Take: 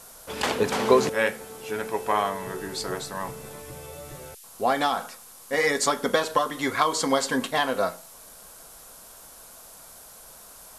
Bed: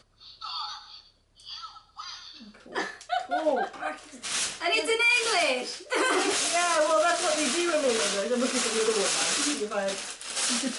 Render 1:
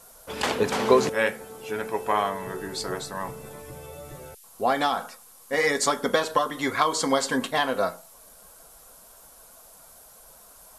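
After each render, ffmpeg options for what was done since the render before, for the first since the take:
-af "afftdn=nr=6:nf=-48"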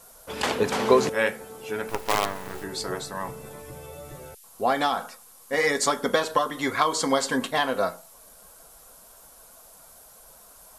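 -filter_complex "[0:a]asettb=1/sr,asplit=3[s0][s1][s2];[s0]atrim=end=1.894[s3];[s1]atrim=start=1.89:end=2.64,asetpts=PTS-STARTPTS,afade=t=in:d=0.004:c=qsin,afade=t=out:st=0.746:d=0.004:c=qsin,acrusher=bits=4:dc=4:mix=0:aa=0.000001[s4];[s2]atrim=start=2.636[s5];[s3][s4]acrossfade=d=0.004:c1=hsin:c2=qsin[s6];[s6][s5]acrossfade=d=0.004:c1=qsin:c2=hsin"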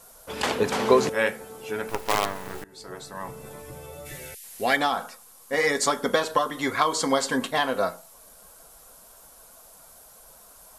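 -filter_complex "[0:a]asplit=3[s0][s1][s2];[s0]afade=t=out:st=4.05:d=0.02[s3];[s1]highshelf=f=1500:t=q:w=3:g=7.5,afade=t=in:st=4.05:d=0.02,afade=t=out:st=4.75:d=0.02[s4];[s2]afade=t=in:st=4.75:d=0.02[s5];[s3][s4][s5]amix=inputs=3:normalize=0,asplit=2[s6][s7];[s6]atrim=end=2.64,asetpts=PTS-STARTPTS,afade=t=out:st=2.636:d=0.004:c=hsin:silence=0.0794328[s8];[s7]atrim=start=2.64,asetpts=PTS-STARTPTS,afade=t=in:d=0.86:silence=0.0794328[s9];[s8][s9]concat=n=2:v=0:a=1"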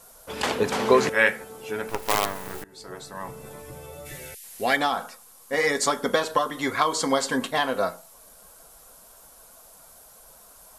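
-filter_complex "[0:a]asettb=1/sr,asplit=3[s0][s1][s2];[s0]atrim=end=0.944[s3];[s1]atrim=start=0.94:end=1.44,asetpts=PTS-STARTPTS,afade=t=in:d=0.004:c=qsin,afade=t=out:st=0.496:d=0.004:c=qsin,equalizer=f=1900:w=1.3:g=8[s4];[s2]atrim=start=1.436[s5];[s3][s4]acrossfade=d=0.004:c1=hsin:c2=qsin[s6];[s6][s5]acrossfade=d=0.004:c1=qsin:c2=hsin,asettb=1/sr,asplit=3[s7][s8][s9];[s7]atrim=end=2.024[s10];[s8]atrim=start=2.02:end=2.63,asetpts=PTS-STARTPTS,afade=t=in:d=0.004:c=qsin,afade=t=out:st=0.606:d=0.004:c=qsin,highshelf=f=8600:g=7.5[s11];[s9]atrim=start=2.626[s12];[s10][s11]acrossfade=d=0.004:c1=hsin:c2=qsin[s13];[s13][s12]acrossfade=d=0.004:c1=qsin:c2=hsin"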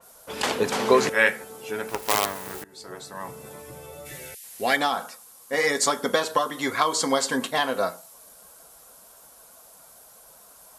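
-af "highpass=f=110:p=1,adynamicequalizer=threshold=0.00794:dfrequency=3600:dqfactor=0.7:tfrequency=3600:tqfactor=0.7:attack=5:release=100:ratio=0.375:range=1.5:mode=boostabove:tftype=highshelf"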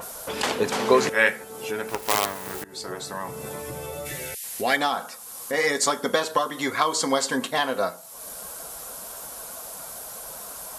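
-af "acompressor=mode=upward:threshold=0.0562:ratio=2.5"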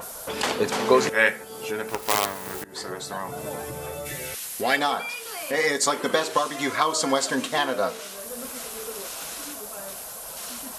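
-filter_complex "[1:a]volume=0.251[s0];[0:a][s0]amix=inputs=2:normalize=0"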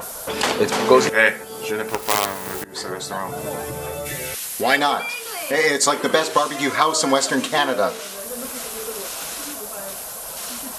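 -af "volume=1.78,alimiter=limit=0.891:level=0:latency=1"

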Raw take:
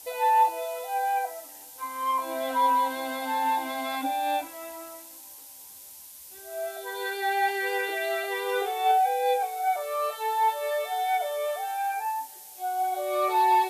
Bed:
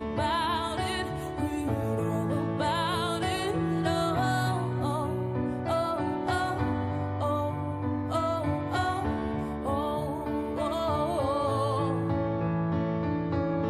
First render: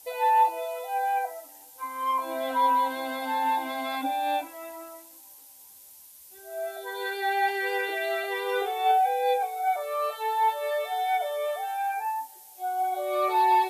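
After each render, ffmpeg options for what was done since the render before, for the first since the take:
-af "afftdn=nr=6:nf=-46"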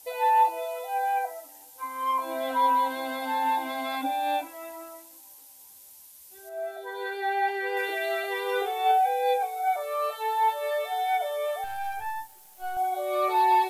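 -filter_complex "[0:a]asettb=1/sr,asplit=3[s0][s1][s2];[s0]atrim=end=6.494[s3];[s1]atrim=start=6.49:end=7.77,asetpts=PTS-STARTPTS,afade=t=in:d=0.004:c=qsin,afade=t=out:st=1.276:d=0.004:c=qsin,highshelf=f=3000:g=-9.5[s4];[s2]atrim=start=7.766[s5];[s3][s4]acrossfade=d=0.004:c1=hsin:c2=qsin[s6];[s6][s5]acrossfade=d=0.004:c1=qsin:c2=hsin,asettb=1/sr,asplit=3[s7][s8][s9];[s7]atrim=end=11.644[s10];[s8]atrim=start=11.64:end=12.77,asetpts=PTS-STARTPTS,afade=t=in:d=0.004:c=qsin,afade=t=out:st=1.126:d=0.004:c=qsin,aeval=exprs='if(lt(val(0),0),0.251*val(0),val(0))':c=same[s11];[s9]atrim=start=12.766[s12];[s10][s11]acrossfade=d=0.004:c1=hsin:c2=qsin[s13];[s13][s12]acrossfade=d=0.004:c1=qsin:c2=hsin"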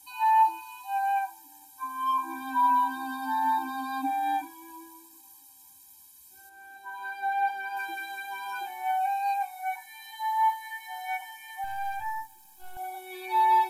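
-af "afftfilt=real='re*eq(mod(floor(b*sr/1024/370),2),0)':imag='im*eq(mod(floor(b*sr/1024/370),2),0)':win_size=1024:overlap=0.75"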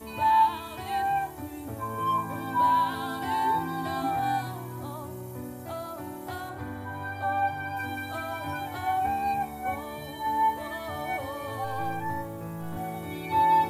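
-filter_complex "[1:a]volume=0.376[s0];[0:a][s0]amix=inputs=2:normalize=0"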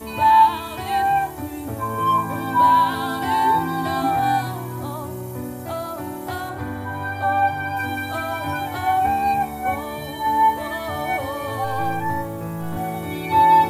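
-af "volume=2.51"

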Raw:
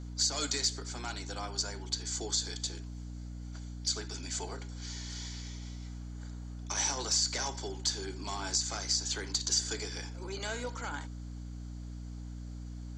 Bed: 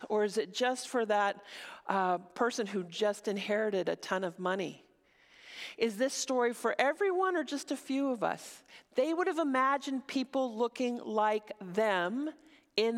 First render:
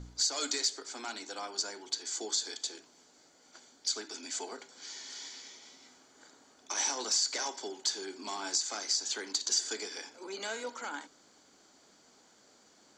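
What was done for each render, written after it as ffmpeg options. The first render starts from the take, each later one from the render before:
-af "bandreject=f=60:t=h:w=4,bandreject=f=120:t=h:w=4,bandreject=f=180:t=h:w=4,bandreject=f=240:t=h:w=4,bandreject=f=300:t=h:w=4"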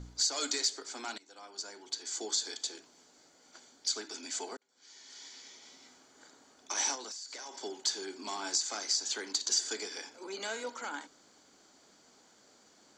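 -filter_complex "[0:a]asettb=1/sr,asplit=3[s0][s1][s2];[s0]atrim=end=6.954[s3];[s1]atrim=start=6.95:end=7.62,asetpts=PTS-STARTPTS,afade=t=in:d=0.004:c=qsin,afade=t=out:st=0.666:d=0.004:c=qsin,acompressor=threshold=0.01:ratio=12:attack=3.2:release=140:knee=1:detection=peak[s4];[s2]atrim=start=7.616[s5];[s3][s4]acrossfade=d=0.004:c1=hsin:c2=qsin[s6];[s6][s5]acrossfade=d=0.004:c1=qsin:c2=hsin,asplit=3[s7][s8][s9];[s7]atrim=end=1.18,asetpts=PTS-STARTPTS,afade=t=out:st=1.176:d=0.004:c=hsin:silence=0.1[s10];[s8]atrim=start=1.18:end=4.57,asetpts=PTS-STARTPTS,afade=t=in:d=1.09:silence=0.1,afade=t=out:st=3.386:d=0.004:c=hsin[s11];[s9]atrim=start=4.57,asetpts=PTS-STARTPTS,afade=t=in:d=1.2[s12];[s10][s11][s12]concat=n=3:v=0:a=1"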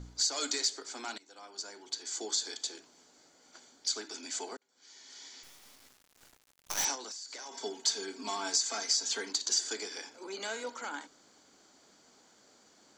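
-filter_complex "[0:a]asettb=1/sr,asplit=3[s0][s1][s2];[s0]atrim=end=5.434[s3];[s1]atrim=start=5.43:end=6.85,asetpts=PTS-STARTPTS,afade=t=in:d=0.004:c=qsin,afade=t=out:st=1.416:d=0.004:c=qsin,acrusher=bits=6:dc=4:mix=0:aa=0.000001[s4];[s2]atrim=start=6.846[s5];[s3][s4]acrossfade=d=0.004:c1=hsin:c2=qsin[s6];[s6][s5]acrossfade=d=0.004:c1=qsin:c2=hsin,asettb=1/sr,asplit=3[s7][s8][s9];[s7]atrim=end=7.514[s10];[s8]atrim=start=7.51:end=9.3,asetpts=PTS-STARTPTS,afade=t=in:d=0.004:c=qsin,afade=t=out:st=1.786:d=0.004:c=qsin,aecho=1:1:4.4:0.76,atrim=end_sample=78939[s11];[s9]atrim=start=9.296[s12];[s10][s11]acrossfade=d=0.004:c1=hsin:c2=qsin[s13];[s13][s12]acrossfade=d=0.004:c1=qsin:c2=hsin"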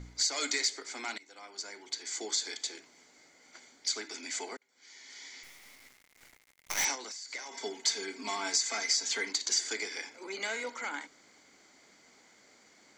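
-af "equalizer=f=2100:t=o:w=0.3:g=14.5"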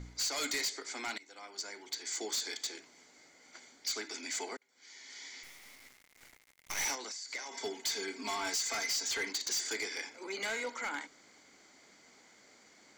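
-af "asoftclip=type=hard:threshold=0.0299"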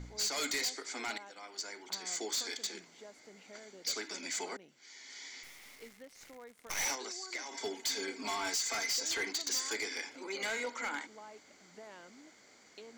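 -filter_complex "[1:a]volume=0.075[s0];[0:a][s0]amix=inputs=2:normalize=0"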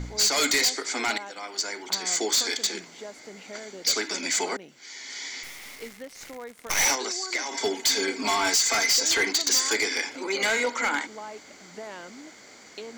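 -af "volume=3.98"

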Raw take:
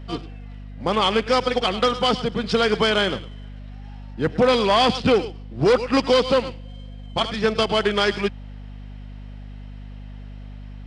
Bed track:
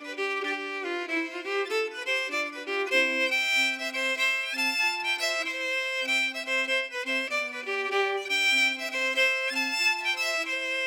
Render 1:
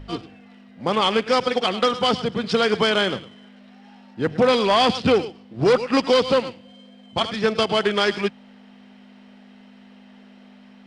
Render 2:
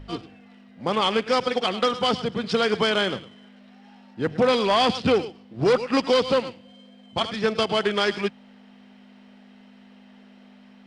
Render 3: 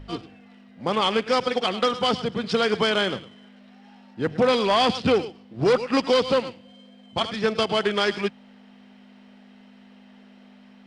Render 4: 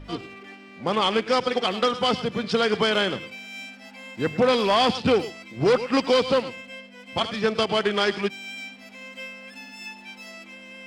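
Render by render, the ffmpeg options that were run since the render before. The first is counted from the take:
-af "bandreject=f=50:t=h:w=4,bandreject=f=100:t=h:w=4,bandreject=f=150:t=h:w=4"
-af "volume=0.75"
-af anull
-filter_complex "[1:a]volume=0.2[s0];[0:a][s0]amix=inputs=2:normalize=0"

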